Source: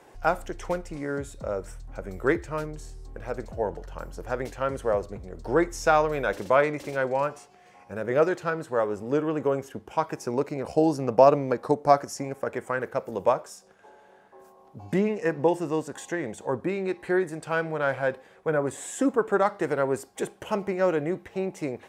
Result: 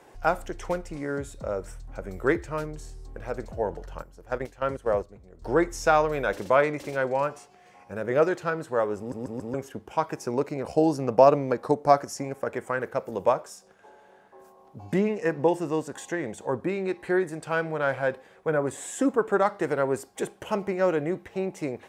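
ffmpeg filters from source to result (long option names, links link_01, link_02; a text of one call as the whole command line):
ffmpeg -i in.wav -filter_complex "[0:a]asettb=1/sr,asplit=3[link_01][link_02][link_03];[link_01]atrim=end=4.024[link_04];[link_02]atrim=start=4.02:end=5.42,asetpts=PTS-STARTPTS,afade=type=in:duration=0.004:curve=qsin,afade=type=out:start_time=1.396:duration=0.004:curve=qsin,agate=range=-11dB:threshold=-32dB:ratio=16:release=100:detection=peak[link_05];[link_03]atrim=start=5.416[link_06];[link_04][link_05]acrossfade=duration=0.004:curve1=hsin:curve2=qsin[link_07];[link_07][link_06]acrossfade=duration=0.004:curve1=qsin:curve2=hsin,asplit=5[link_08][link_09][link_10][link_11][link_12];[link_08]atrim=end=9.122[link_13];[link_09]atrim=start=8.978:end=9.122[link_14];[link_10]atrim=start=8.978:end=9.122[link_15];[link_11]atrim=start=8.978:end=9.122[link_16];[link_12]atrim=start=9.538[link_17];[link_13][link_14]acrossfade=duration=0.004:curve1=hsin:curve2=hsin[link_18];[link_18][link_15]acrossfade=duration=0.004:curve1=hsin:curve2=hsin[link_19];[link_19][link_16]acrossfade=duration=0.004:curve1=hsin:curve2=hsin[link_20];[link_20][link_17]acrossfade=duration=0.004:curve1=hsin:curve2=hsin" out.wav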